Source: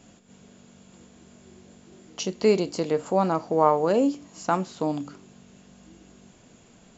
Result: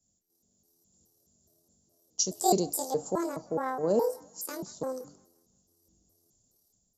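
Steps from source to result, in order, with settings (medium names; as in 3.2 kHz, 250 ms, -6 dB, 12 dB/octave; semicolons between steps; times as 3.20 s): pitch shift switched off and on +9.5 st, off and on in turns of 210 ms; level rider gain up to 3 dB; FFT filter 640 Hz 0 dB, 2.4 kHz -21 dB, 5.6 kHz +8 dB; on a send: feedback echo behind a band-pass 173 ms, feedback 57%, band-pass 1.3 kHz, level -18 dB; on the sum: three bands expanded up and down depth 70%; trim -9 dB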